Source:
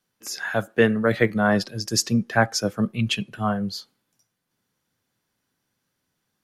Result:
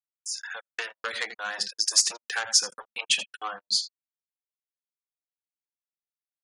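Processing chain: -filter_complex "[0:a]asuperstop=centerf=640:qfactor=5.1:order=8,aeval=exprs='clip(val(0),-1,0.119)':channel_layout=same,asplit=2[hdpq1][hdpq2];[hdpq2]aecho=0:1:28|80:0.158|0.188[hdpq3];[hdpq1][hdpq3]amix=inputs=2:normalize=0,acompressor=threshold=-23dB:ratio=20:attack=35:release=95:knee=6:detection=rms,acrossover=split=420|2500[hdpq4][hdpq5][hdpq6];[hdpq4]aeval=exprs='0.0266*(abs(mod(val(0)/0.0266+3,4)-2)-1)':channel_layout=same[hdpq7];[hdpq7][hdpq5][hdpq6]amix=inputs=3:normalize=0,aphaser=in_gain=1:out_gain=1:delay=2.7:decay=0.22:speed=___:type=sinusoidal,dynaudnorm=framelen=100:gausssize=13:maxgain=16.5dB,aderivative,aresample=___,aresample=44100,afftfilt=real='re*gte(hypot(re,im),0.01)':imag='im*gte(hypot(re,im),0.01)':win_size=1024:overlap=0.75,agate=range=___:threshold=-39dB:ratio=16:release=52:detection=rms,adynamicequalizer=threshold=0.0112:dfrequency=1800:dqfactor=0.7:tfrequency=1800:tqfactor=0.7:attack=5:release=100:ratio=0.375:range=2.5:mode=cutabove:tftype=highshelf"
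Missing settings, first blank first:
1.9, 22050, -57dB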